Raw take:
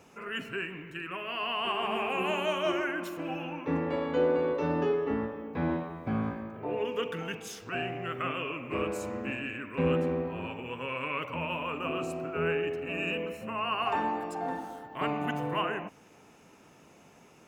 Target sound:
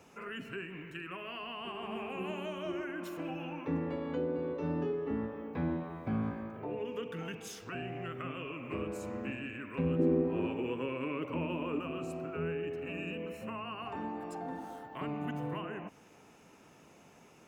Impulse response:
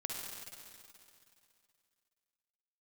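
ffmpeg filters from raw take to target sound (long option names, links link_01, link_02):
-filter_complex "[0:a]acrossover=split=360[link_01][link_02];[link_02]acompressor=threshold=-39dB:ratio=6[link_03];[link_01][link_03]amix=inputs=2:normalize=0,asettb=1/sr,asplit=3[link_04][link_05][link_06];[link_04]atrim=end=9.994[link_07];[link_05]atrim=start=9.99:end=11.8,asetpts=PTS-STARTPTS,afade=type=in:duration=0.004:curve=qsin,afade=type=out:start_time=1.806:duration=0.004:curve=qsin,equalizer=frequency=340:width=1.4:gain=13[link_08];[link_06]atrim=start=11.796[link_09];[link_07][link_08]acrossfade=duration=0.004:curve1=hsin:curve2=qsin[link_10];[link_10][link_09]acrossfade=duration=0.004:curve1=qsin:curve2=hsin,volume=-2dB"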